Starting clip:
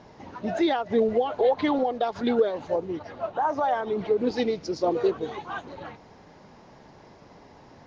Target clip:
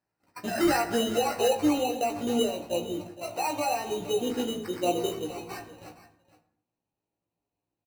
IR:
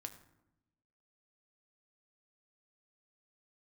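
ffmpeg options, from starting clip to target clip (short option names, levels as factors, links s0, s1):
-filter_complex "[0:a]agate=range=0.02:threshold=0.0126:ratio=16:detection=peak,asetnsamples=n=441:p=0,asendcmd='1.48 equalizer g -7',equalizer=f=1800:w=1.2:g=9.5,acrusher=samples=13:mix=1:aa=0.000001,asplit=2[s0][s1];[s1]adelay=17,volume=0.562[s2];[s0][s2]amix=inputs=2:normalize=0,aecho=1:1:466:0.158[s3];[1:a]atrim=start_sample=2205,afade=t=out:st=0.32:d=0.01,atrim=end_sample=14553[s4];[s3][s4]afir=irnorm=-1:irlink=0"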